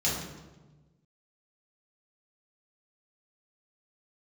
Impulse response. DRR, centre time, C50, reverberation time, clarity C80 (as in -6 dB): -7.0 dB, 61 ms, 1.5 dB, 1.2 s, 4.5 dB